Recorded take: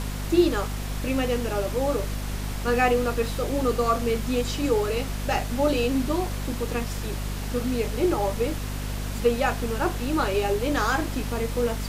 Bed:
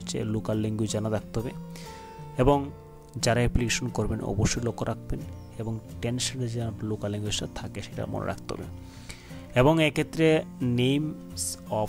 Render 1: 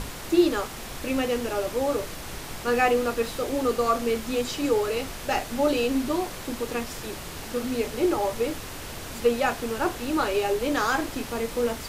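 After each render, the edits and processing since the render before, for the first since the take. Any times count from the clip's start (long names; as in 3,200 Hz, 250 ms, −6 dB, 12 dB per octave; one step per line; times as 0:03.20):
mains-hum notches 50/100/150/200/250 Hz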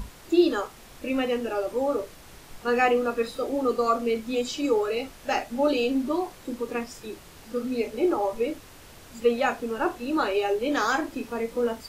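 noise reduction from a noise print 11 dB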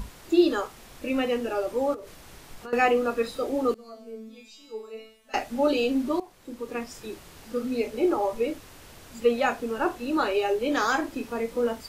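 0:01.94–0:02.73: downward compressor 8 to 1, threshold −36 dBFS
0:03.74–0:05.34: tuned comb filter 220 Hz, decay 0.57 s, mix 100%
0:06.20–0:07.00: fade in, from −15.5 dB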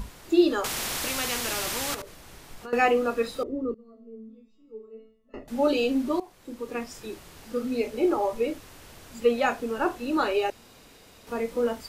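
0:00.64–0:02.02: every bin compressed towards the loudest bin 4 to 1
0:03.43–0:05.48: moving average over 56 samples
0:10.50–0:11.27: fill with room tone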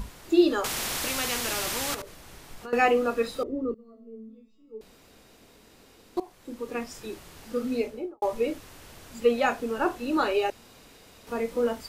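0:04.81–0:06.17: fill with room tone
0:07.73–0:08.22: fade out and dull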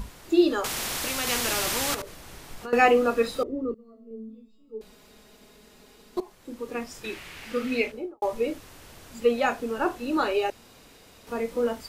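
0:01.27–0:03.43: clip gain +3 dB
0:04.10–0:06.35: comb filter 4.8 ms
0:07.04–0:07.92: parametric band 2,300 Hz +14 dB 1.4 octaves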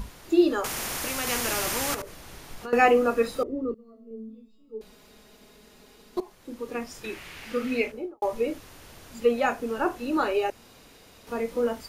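notch filter 7,800 Hz, Q 17
dynamic equaliser 3,800 Hz, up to −5 dB, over −45 dBFS, Q 1.6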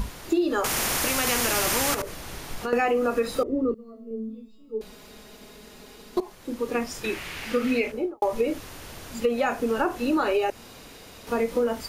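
in parallel at +1.5 dB: brickwall limiter −18 dBFS, peak gain reduction 11.5 dB
on the sum: downward compressor 6 to 1, threshold −20 dBFS, peak gain reduction 10 dB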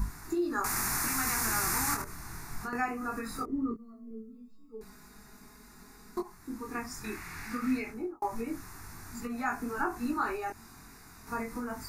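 chorus effect 0.21 Hz, delay 20 ms, depth 3.9 ms
phaser with its sweep stopped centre 1,300 Hz, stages 4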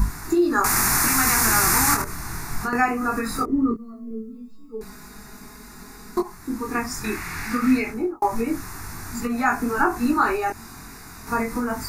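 level +11.5 dB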